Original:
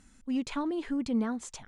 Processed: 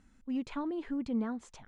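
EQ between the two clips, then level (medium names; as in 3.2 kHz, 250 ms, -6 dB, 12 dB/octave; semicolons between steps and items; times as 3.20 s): low-pass 2.3 kHz 6 dB/octave; -3.5 dB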